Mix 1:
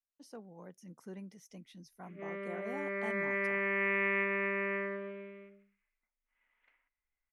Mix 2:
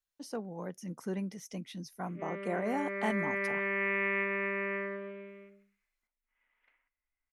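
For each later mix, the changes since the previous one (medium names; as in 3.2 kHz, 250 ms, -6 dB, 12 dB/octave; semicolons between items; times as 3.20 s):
speech +10.5 dB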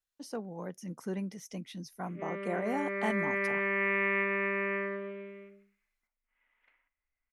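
reverb: on, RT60 0.40 s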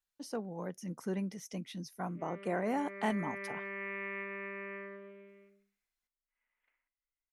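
background -11.0 dB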